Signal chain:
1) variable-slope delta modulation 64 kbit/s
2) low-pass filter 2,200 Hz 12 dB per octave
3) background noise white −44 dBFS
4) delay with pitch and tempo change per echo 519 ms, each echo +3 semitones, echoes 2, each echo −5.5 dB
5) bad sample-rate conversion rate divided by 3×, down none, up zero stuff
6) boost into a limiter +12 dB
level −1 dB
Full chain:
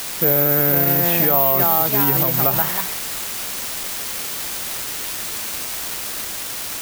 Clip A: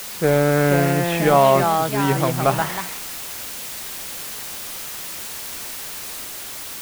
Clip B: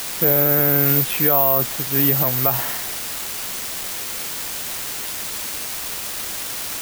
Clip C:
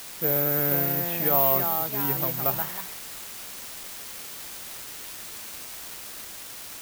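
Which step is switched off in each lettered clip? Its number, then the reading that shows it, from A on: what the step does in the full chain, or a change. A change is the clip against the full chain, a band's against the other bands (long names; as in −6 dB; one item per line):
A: 5, 8 kHz band −7.0 dB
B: 4, change in integrated loudness −1.0 LU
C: 6, change in crest factor +5.0 dB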